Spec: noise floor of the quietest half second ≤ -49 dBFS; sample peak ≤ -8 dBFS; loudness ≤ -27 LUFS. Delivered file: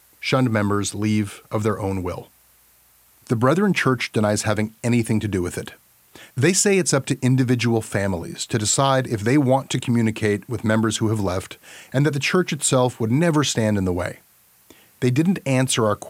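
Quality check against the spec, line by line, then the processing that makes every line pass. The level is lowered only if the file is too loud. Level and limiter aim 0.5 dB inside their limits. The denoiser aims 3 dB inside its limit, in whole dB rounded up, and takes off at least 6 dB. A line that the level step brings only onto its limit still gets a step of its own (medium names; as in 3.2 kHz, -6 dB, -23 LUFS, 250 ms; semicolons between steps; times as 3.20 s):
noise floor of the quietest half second -56 dBFS: pass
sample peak -3.5 dBFS: fail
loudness -21.0 LUFS: fail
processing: trim -6.5 dB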